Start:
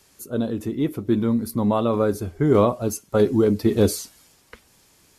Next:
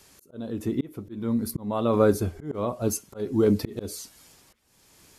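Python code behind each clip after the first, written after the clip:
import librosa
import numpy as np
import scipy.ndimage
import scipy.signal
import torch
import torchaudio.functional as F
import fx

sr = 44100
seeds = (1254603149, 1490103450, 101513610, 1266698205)

y = fx.auto_swell(x, sr, attack_ms=497.0)
y = F.gain(torch.from_numpy(y), 2.0).numpy()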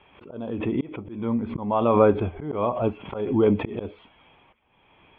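y = scipy.signal.sosfilt(scipy.signal.cheby1(6, 9, 3400.0, 'lowpass', fs=sr, output='sos'), x)
y = fx.pre_swell(y, sr, db_per_s=84.0)
y = F.gain(torch.from_numpy(y), 8.5).numpy()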